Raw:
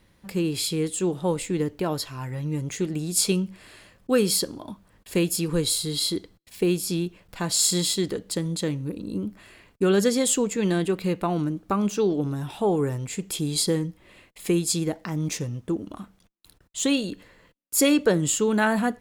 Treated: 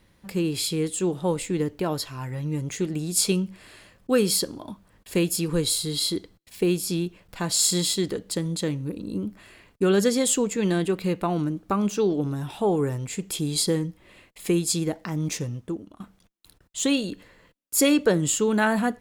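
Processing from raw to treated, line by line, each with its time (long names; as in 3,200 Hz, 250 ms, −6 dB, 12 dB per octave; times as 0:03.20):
0:15.50–0:16.00: fade out, to −15.5 dB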